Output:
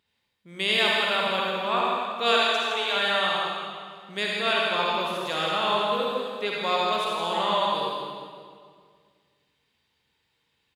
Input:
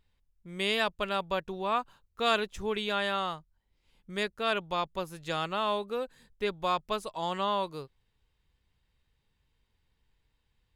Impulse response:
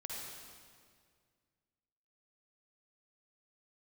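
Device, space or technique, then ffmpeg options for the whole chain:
PA in a hall: -filter_complex "[0:a]asplit=3[link_01][link_02][link_03];[link_01]afade=type=out:start_time=2.31:duration=0.02[link_04];[link_02]highpass=frequency=510:width=0.5412,highpass=frequency=510:width=1.3066,afade=type=in:start_time=2.31:duration=0.02,afade=type=out:start_time=2.94:duration=0.02[link_05];[link_03]afade=type=in:start_time=2.94:duration=0.02[link_06];[link_04][link_05][link_06]amix=inputs=3:normalize=0,highpass=180,equalizer=frequency=3300:width_type=o:width=1.7:gain=5.5,aecho=1:1:161:0.376[link_07];[1:a]atrim=start_sample=2205[link_08];[link_07][link_08]afir=irnorm=-1:irlink=0,volume=5.5dB"

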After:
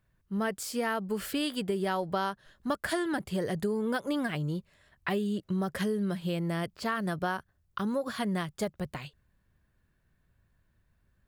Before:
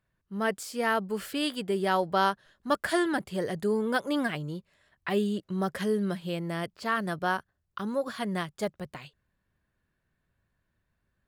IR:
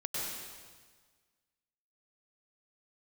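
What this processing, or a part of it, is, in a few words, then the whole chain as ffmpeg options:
ASMR close-microphone chain: -af "lowshelf=frequency=140:gain=8,acompressor=threshold=-29dB:ratio=6,highshelf=frequency=12000:gain=4.5,volume=2dB"

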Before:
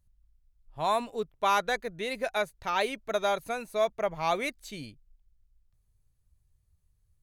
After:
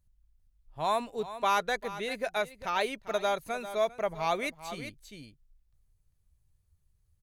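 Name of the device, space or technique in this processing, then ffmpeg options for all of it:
ducked delay: -filter_complex "[0:a]asplit=3[link_01][link_02][link_03];[link_02]adelay=397,volume=-5dB[link_04];[link_03]apad=whole_len=336161[link_05];[link_04][link_05]sidechaincompress=threshold=-34dB:ratio=10:attack=7.8:release=799[link_06];[link_01][link_06]amix=inputs=2:normalize=0,volume=-1.5dB"

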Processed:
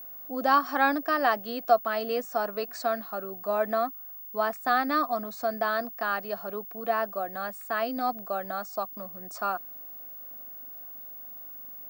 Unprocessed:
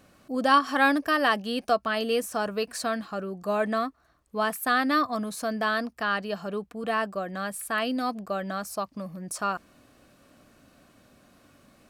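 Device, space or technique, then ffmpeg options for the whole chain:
old television with a line whistle: -af "highpass=frequency=220:width=0.5412,highpass=frequency=220:width=1.3066,equalizer=frequency=720:width_type=q:width=4:gain=9,equalizer=frequency=1300:width_type=q:width=4:gain=3,equalizer=frequency=3000:width_type=q:width=4:gain=-7,lowpass=frequency=7000:width=0.5412,lowpass=frequency=7000:width=1.3066,aeval=exprs='val(0)+0.0158*sin(2*PI*15625*n/s)':channel_layout=same,volume=-4dB"

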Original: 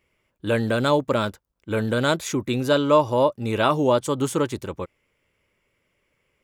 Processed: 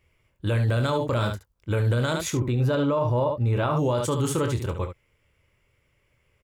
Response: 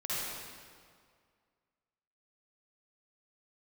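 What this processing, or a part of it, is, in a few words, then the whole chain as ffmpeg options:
car stereo with a boomy subwoofer: -filter_complex "[0:a]asettb=1/sr,asplit=3[link_01][link_02][link_03];[link_01]atrim=end=2.304[link_04];[link_02]atrim=start=2.3:end=3.77,asetpts=PTS-STARTPTS,afade=type=in:duration=0.004:curve=qsin,afade=type=out:start_time=1.466:duration=0.004:curve=qsin,equalizer=frequency=8300:width=0.33:gain=-12[link_05];[link_03]atrim=start=3.766[link_06];[link_04][link_05]acrossfade=duration=0.004:curve1=hsin:curve2=qsin[link_07];[link_07][link_06]acrossfade=duration=0.004:curve1=qsin:curve2=hsin,lowshelf=frequency=150:width_type=q:width=1.5:gain=8,aecho=1:1:25|71:0.355|0.335,alimiter=limit=-16.5dB:level=0:latency=1:release=21"

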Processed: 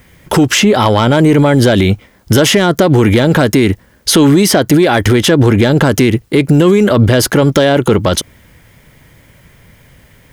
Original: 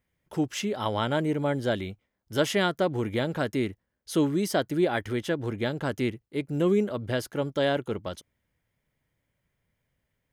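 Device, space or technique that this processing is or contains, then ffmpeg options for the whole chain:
mastering chain: -filter_complex "[0:a]equalizer=frequency=640:width_type=o:width=0.77:gain=-2,acrossover=split=1100|3400[link_01][link_02][link_03];[link_01]acompressor=threshold=-28dB:ratio=4[link_04];[link_02]acompressor=threshold=-40dB:ratio=4[link_05];[link_03]acompressor=threshold=-42dB:ratio=4[link_06];[link_04][link_05][link_06]amix=inputs=3:normalize=0,acompressor=threshold=-38dB:ratio=1.5,asoftclip=type=tanh:threshold=-24.5dB,asoftclip=type=hard:threshold=-27.5dB,alimiter=level_in=35dB:limit=-1dB:release=50:level=0:latency=1,volume=-1dB"

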